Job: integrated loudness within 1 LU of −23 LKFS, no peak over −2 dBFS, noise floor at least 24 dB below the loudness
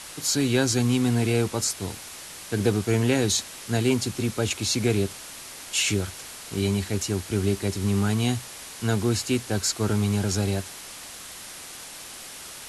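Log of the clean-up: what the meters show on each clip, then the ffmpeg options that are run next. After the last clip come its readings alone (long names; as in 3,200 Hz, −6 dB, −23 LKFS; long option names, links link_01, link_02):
background noise floor −41 dBFS; target noise floor −49 dBFS; integrated loudness −25.0 LKFS; sample peak −8.5 dBFS; target loudness −23.0 LKFS
→ -af "afftdn=noise_reduction=8:noise_floor=-41"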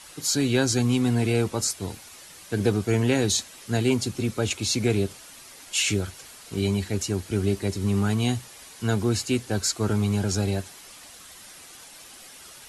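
background noise floor −46 dBFS; target noise floor −49 dBFS
→ -af "afftdn=noise_reduction=6:noise_floor=-46"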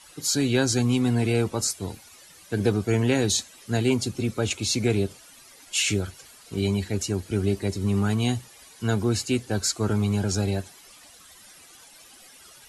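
background noise floor −51 dBFS; integrated loudness −25.0 LKFS; sample peak −9.0 dBFS; target loudness −23.0 LKFS
→ -af "volume=2dB"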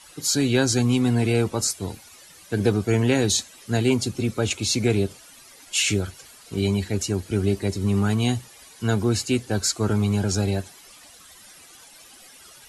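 integrated loudness −23.0 LKFS; sample peak −7.0 dBFS; background noise floor −49 dBFS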